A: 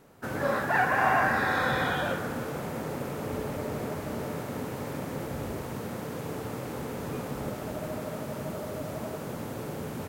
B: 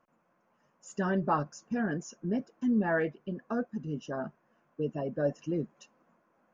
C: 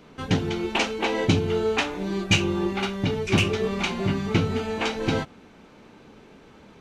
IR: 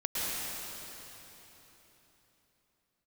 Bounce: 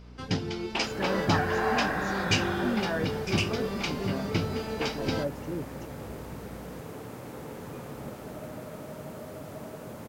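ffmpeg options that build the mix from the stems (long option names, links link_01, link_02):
-filter_complex "[0:a]adelay=600,volume=-8dB,asplit=2[link_01][link_02];[link_02]volume=-12.5dB[link_03];[1:a]volume=-3.5dB[link_04];[2:a]equalizer=frequency=5000:width=5.7:gain=13.5,aeval=exprs='val(0)+0.01*(sin(2*PI*60*n/s)+sin(2*PI*2*60*n/s)/2+sin(2*PI*3*60*n/s)/3+sin(2*PI*4*60*n/s)/4+sin(2*PI*5*60*n/s)/5)':channel_layout=same,volume=-6.5dB[link_05];[3:a]atrim=start_sample=2205[link_06];[link_03][link_06]afir=irnorm=-1:irlink=0[link_07];[link_01][link_04][link_05][link_07]amix=inputs=4:normalize=0"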